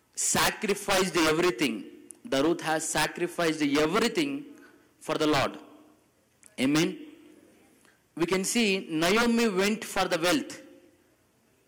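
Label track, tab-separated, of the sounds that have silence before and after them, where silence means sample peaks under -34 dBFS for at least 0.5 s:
5.040000	5.570000	sound
6.430000	6.940000	sound
8.170000	10.550000	sound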